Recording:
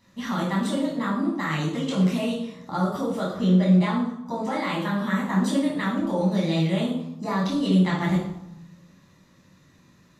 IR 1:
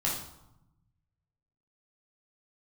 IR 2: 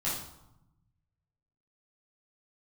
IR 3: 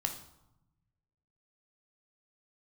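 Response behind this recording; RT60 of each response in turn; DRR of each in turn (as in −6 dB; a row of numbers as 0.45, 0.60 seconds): 1; 0.85, 0.85, 0.85 seconds; −5.5, −9.5, 4.0 decibels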